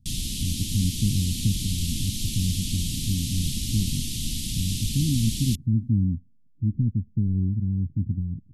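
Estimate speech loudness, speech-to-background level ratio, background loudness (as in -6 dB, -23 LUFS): -27.5 LUFS, 2.0 dB, -29.5 LUFS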